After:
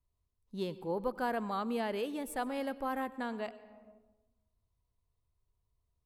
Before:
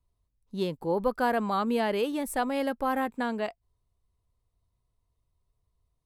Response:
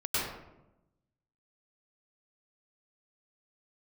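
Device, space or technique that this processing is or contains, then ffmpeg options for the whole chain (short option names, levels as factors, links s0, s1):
compressed reverb return: -filter_complex "[0:a]asplit=2[s0][s1];[1:a]atrim=start_sample=2205[s2];[s1][s2]afir=irnorm=-1:irlink=0,acompressor=threshold=0.0316:ratio=8,volume=0.266[s3];[s0][s3]amix=inputs=2:normalize=0,volume=0.398"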